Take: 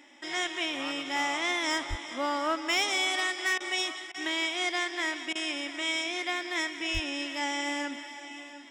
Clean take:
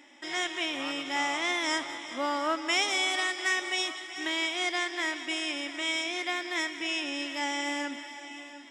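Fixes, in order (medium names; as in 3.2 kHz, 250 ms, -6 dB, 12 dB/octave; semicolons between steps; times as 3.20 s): clip repair -20.5 dBFS; 1.89–2.01 s: high-pass 140 Hz 24 dB/octave; 6.93–7.05 s: high-pass 140 Hz 24 dB/octave; interpolate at 3.58/4.12/5.33 s, 22 ms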